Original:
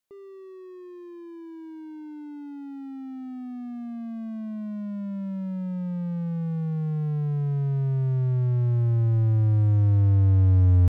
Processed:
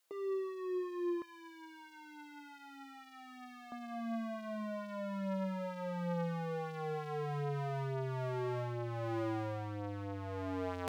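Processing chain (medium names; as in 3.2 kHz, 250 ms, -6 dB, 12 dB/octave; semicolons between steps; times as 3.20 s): flange 0.65 Hz, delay 5.5 ms, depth 5.3 ms, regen +22%; peak limiter -22.5 dBFS, peak gain reduction 9 dB; high-pass 370 Hz 12 dB/octave, from 1.22 s 1.4 kHz, from 3.72 s 560 Hz; trim +11.5 dB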